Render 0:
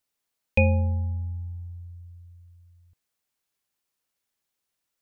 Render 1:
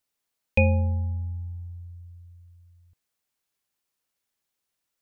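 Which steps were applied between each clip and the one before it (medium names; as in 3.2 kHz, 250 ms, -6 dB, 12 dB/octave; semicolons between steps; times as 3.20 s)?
no audible change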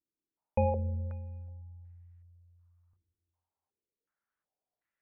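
plate-style reverb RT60 1.2 s, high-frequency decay 0.9×, pre-delay 0 ms, DRR 5.5 dB; step-sequenced low-pass 2.7 Hz 330–1900 Hz; trim -8.5 dB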